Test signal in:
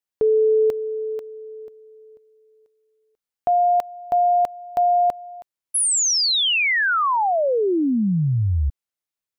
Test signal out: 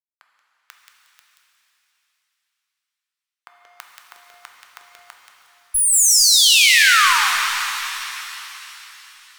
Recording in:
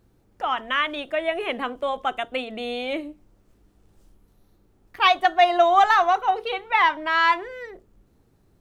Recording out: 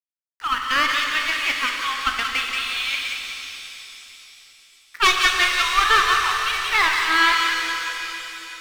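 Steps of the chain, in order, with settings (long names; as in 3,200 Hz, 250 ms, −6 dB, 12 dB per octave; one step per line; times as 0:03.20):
Butterworth high-pass 1,100 Hz 48 dB per octave
in parallel at −3 dB: speech leveller within 4 dB
on the sum: asymmetric clip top −21.5 dBFS
delay with a high-pass on its return 180 ms, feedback 37%, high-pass 1,700 Hz, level −3 dB
dead-zone distortion −42.5 dBFS
reverb with rising layers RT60 3.5 s, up +7 semitones, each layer −8 dB, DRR 2 dB
level +1.5 dB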